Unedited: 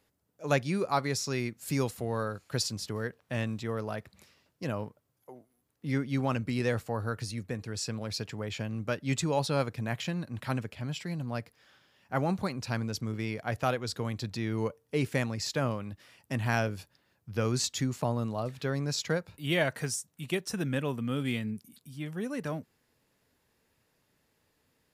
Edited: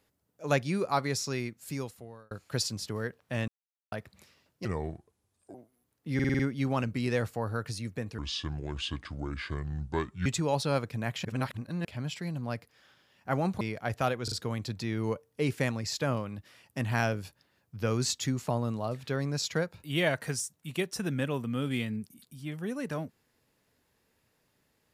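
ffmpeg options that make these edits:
-filter_complex "[0:a]asplit=18[a][b][c][d][e][f][g][h][i][j][k][l][m][n][o][p][q][r];[a]atrim=end=2.31,asetpts=PTS-STARTPTS,afade=t=out:st=1.2:d=1.11[s];[b]atrim=start=2.31:end=3.48,asetpts=PTS-STARTPTS,afade=t=in:d=0.004:c=hsin,afade=t=out:st=1.166:d=0.004:c=hsin[t];[c]atrim=start=3.48:end=3.92,asetpts=PTS-STARTPTS,volume=0[u];[d]atrim=start=3.92:end=4.654,asetpts=PTS-STARTPTS,afade=t=in:d=0.004:c=hsin[v];[e]atrim=start=4.65:end=5.32,asetpts=PTS-STARTPTS,asetrate=33075,aresample=44100[w];[f]atrim=start=5.316:end=5.972[x];[g]atrim=start=5.918:end=5.972[y];[h]atrim=start=5.918:end=5.972[z];[i]atrim=start=5.918:end=5.972[aa];[j]atrim=start=5.918:end=5.972[ab];[k]atrim=start=5.918:end=7.714[ac];[l]atrim=start=7.71:end=9.1,asetpts=PTS-STARTPTS,asetrate=29547,aresample=44100,atrim=end_sample=91491,asetpts=PTS-STARTPTS[ad];[m]atrim=start=9.096:end=10.092[ae];[n]atrim=start=10.088:end=10.692,asetpts=PTS-STARTPTS,areverse[af];[o]atrim=start=10.688:end=12.452[ag];[p]atrim=start=13.228:end=13.902[ah];[q]atrim=start=13.858:end=13.902[ai];[r]atrim=start=13.858[aj];[s][t][u][v]concat=n=4:v=0:a=1[ak];[ak][w]acrossfade=d=0.004:c1=hsin:c2=hsin[al];[al][x]acrossfade=d=0.004:c1=hsin:c2=hsin[am];[am][y]acrossfade=d=0.004:c1=hsin:c2=hsin[an];[an][z]acrossfade=d=0.004:c1=hsin:c2=hsin[ao];[ao][aa]acrossfade=d=0.004:c1=hsin:c2=hsin[ap];[ap][ab]acrossfade=d=0.004:c1=hsin:c2=hsin[aq];[aq][ac]acrossfade=d=0.004:c1=hsin:c2=hsin[ar];[ar][ad]acrossfade=d=0.004:c1=hsin:c2=hsin[as];[as][ae]acrossfade=d=0.004:c1=hsin:c2=hsin[at];[at][af]acrossfade=d=0.004:c1=hsin:c2=hsin[au];[au][ag]acrossfade=d=0.004:c1=hsin:c2=hsin[av];[av][ah]acrossfade=d=0.004:c1=hsin:c2=hsin[aw];[aw][ai]acrossfade=d=0.004:c1=hsin:c2=hsin[ax];[ax][aj]acrossfade=d=0.004:c1=hsin:c2=hsin"

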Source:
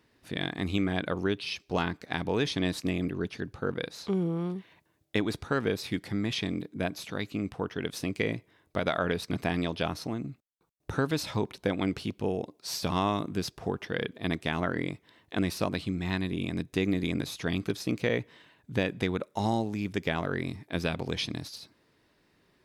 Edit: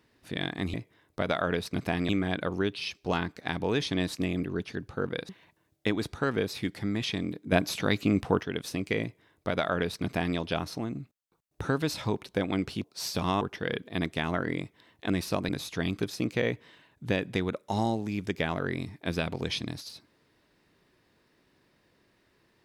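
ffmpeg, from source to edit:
-filter_complex "[0:a]asplit=9[a][b][c][d][e][f][g][h][i];[a]atrim=end=0.742[j];[b]atrim=start=8.308:end=9.662[k];[c]atrim=start=0.738:end=3.942[l];[d]atrim=start=4.578:end=6.812[m];[e]atrim=start=6.808:end=7.722,asetpts=PTS-STARTPTS,volume=7.5dB[n];[f]atrim=start=7.718:end=12.132[o];[g]atrim=start=12.518:end=13.092[p];[h]atrim=start=13.698:end=15.782[q];[i]atrim=start=17.158[r];[j][k]acrossfade=d=0.004:c1=hsin:c2=hsin[s];[s][l]acrossfade=d=0.004:c1=hsin:c2=hsin[t];[t][m]acrossfade=d=0.004:c1=hsin:c2=hsin[u];[u][n]acrossfade=d=0.004:c1=hsin:c2=hsin[v];[v][o]acrossfade=d=0.004:c1=hsin:c2=hsin[w];[w][p]acrossfade=d=0.004:c1=hsin:c2=hsin[x];[x][q]acrossfade=d=0.004:c1=hsin:c2=hsin[y];[y][r]acrossfade=d=0.004:c1=hsin:c2=hsin"

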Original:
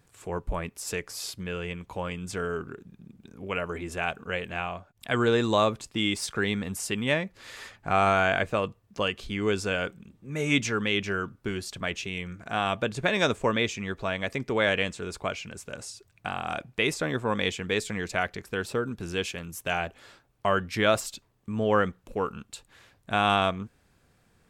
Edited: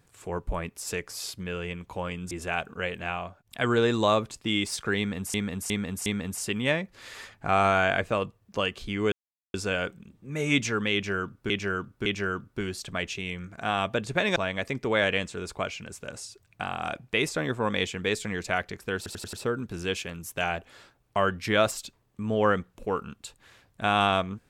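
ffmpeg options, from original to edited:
-filter_complex "[0:a]asplit=13[a][b][c][d][e][f][g][h][i][j][k][l][m];[a]atrim=end=2.312[n];[b]atrim=start=3.808:end=6.842[o];[c]atrim=start=6.478:end=6.842[p];[d]atrim=start=6.478:end=6.842[q];[e]atrim=start=6.478:end=9.54,asetpts=PTS-STARTPTS,afade=t=out:st=3.058:d=0.004:c=hsin,apad=pad_dur=0.42[r];[f]atrim=start=9.54:end=11.502,asetpts=PTS-STARTPTS,afade=t=in:d=0.004:c=hsin[s];[g]atrim=start=10.938:end=11.502[t];[h]atrim=start=10.938:end=13.242[u];[i]atrim=start=14.008:end=18.712[v];[j]atrim=start=18.618:end=18.712[w];[k]atrim=start=18.618:end=18.712[x];[l]atrim=start=18.618:end=18.712[y];[m]atrim=start=18.618[z];[n][o]acrossfade=d=0.004:c1=hsin:c2=hsin[aa];[aa][p]acrossfade=d=0.004:c1=hsin:c2=hsin[ab];[ab][q]acrossfade=d=0.004:c1=hsin:c2=hsin[ac];[r][s]concat=n=2:v=0:a=1[ad];[ac][ad]acrossfade=d=0.004:c1=hsin:c2=hsin[ae];[ae][t]acrossfade=d=0.004:c1=hsin:c2=hsin[af];[af][u]acrossfade=d=0.004:c1=hsin:c2=hsin[ag];[ag][v]acrossfade=d=0.004:c1=hsin:c2=hsin[ah];[ah][w]acrossfade=d=0.004:c1=hsin:c2=hsin[ai];[ai][x]acrossfade=d=0.004:c1=hsin:c2=hsin[aj];[aj][y]acrossfade=d=0.004:c1=hsin:c2=hsin[ak];[ak][z]acrossfade=d=0.004:c1=hsin:c2=hsin"

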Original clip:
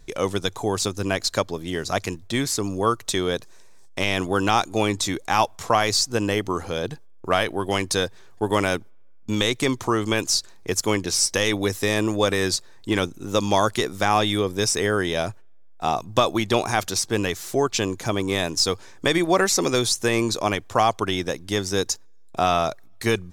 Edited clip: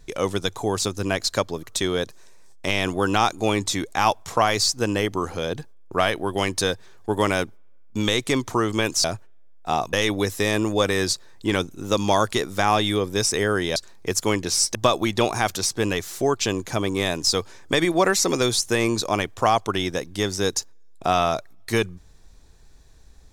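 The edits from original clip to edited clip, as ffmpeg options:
-filter_complex "[0:a]asplit=6[a][b][c][d][e][f];[a]atrim=end=1.632[g];[b]atrim=start=2.958:end=10.372[h];[c]atrim=start=15.188:end=16.082[i];[d]atrim=start=11.358:end=15.192[j];[e]atrim=start=10.368:end=11.362[k];[f]atrim=start=16.078[l];[g][h]acrossfade=d=0.004:c1=hsin:c2=hsin[m];[m][i]acrossfade=d=0.004:c1=hsin:c2=hsin[n];[n][j]acrossfade=d=0.004:c1=hsin:c2=hsin[o];[o][k]acrossfade=d=0.004:c1=hsin:c2=hsin[p];[p][l]acrossfade=d=0.004:c1=hsin:c2=hsin"

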